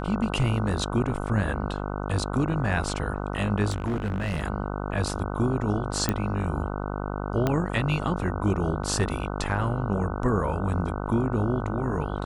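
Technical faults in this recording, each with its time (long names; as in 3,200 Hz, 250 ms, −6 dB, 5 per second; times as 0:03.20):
mains buzz 50 Hz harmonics 30 −31 dBFS
0:03.70–0:04.42: clipping −23.5 dBFS
0:06.09: click −9 dBFS
0:07.47: click −11 dBFS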